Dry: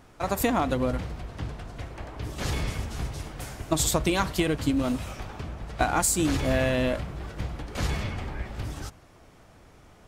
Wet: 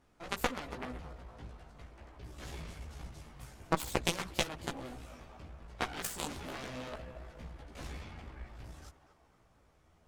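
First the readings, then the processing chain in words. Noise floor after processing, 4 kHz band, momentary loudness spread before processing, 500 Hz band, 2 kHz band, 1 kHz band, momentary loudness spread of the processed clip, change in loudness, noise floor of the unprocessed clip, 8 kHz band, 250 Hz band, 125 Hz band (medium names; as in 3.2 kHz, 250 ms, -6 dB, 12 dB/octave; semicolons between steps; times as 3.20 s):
-67 dBFS, -7.0 dB, 14 LU, -13.0 dB, -9.0 dB, -10.5 dB, 18 LU, -11.5 dB, -54 dBFS, -14.0 dB, -16.0 dB, -15.0 dB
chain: band-passed feedback delay 237 ms, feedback 61%, band-pass 970 Hz, level -9 dB; Chebyshev shaper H 3 -8 dB, 4 -14 dB, 6 -18 dB, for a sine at -9 dBFS; chorus voices 4, 0.99 Hz, delay 15 ms, depth 3 ms; trim +2.5 dB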